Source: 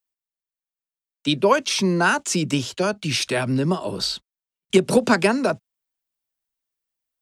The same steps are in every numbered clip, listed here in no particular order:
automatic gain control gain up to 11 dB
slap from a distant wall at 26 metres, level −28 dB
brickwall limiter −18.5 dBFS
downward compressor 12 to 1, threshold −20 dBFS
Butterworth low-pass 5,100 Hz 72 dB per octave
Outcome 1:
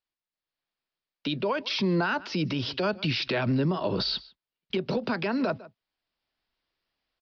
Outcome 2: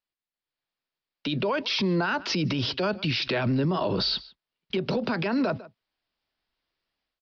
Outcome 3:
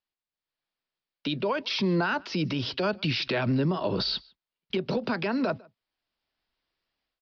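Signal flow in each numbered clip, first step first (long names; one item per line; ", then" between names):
slap from a distant wall, then automatic gain control, then downward compressor, then brickwall limiter, then Butterworth low-pass
Butterworth low-pass, then downward compressor, then automatic gain control, then slap from a distant wall, then brickwall limiter
automatic gain control, then downward compressor, then slap from a distant wall, then brickwall limiter, then Butterworth low-pass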